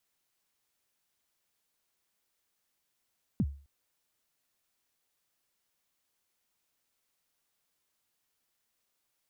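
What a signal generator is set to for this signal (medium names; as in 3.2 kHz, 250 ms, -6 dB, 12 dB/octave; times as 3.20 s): kick drum length 0.26 s, from 260 Hz, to 70 Hz, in 50 ms, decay 0.39 s, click off, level -21.5 dB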